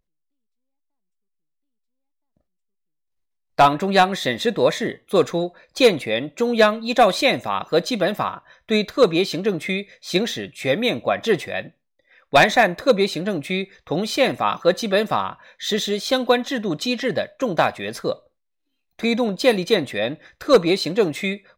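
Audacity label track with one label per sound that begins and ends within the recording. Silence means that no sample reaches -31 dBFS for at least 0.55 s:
3.580000	11.670000	sound
12.330000	18.130000	sound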